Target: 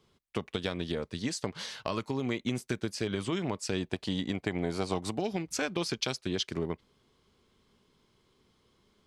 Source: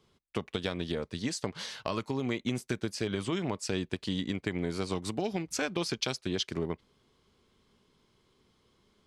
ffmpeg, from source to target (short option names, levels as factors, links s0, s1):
-filter_complex "[0:a]asettb=1/sr,asplit=3[s0][s1][s2];[s0]atrim=end=3.804[s3];[s1]atrim=start=3.8:end=5.18,asetpts=PTS-STARTPTS,afade=t=in:d=0.004:c=qsin,afade=t=out:st=1.376:d=0.004:c=qsin,equalizer=f=730:t=o:w=0.66:g=8.5[s4];[s2]atrim=start=5.176[s5];[s3][s4]acrossfade=d=0.004:c1=hsin:c2=qsin[s6];[s6][s5]acrossfade=d=0.004:c1=qsin:c2=hsin"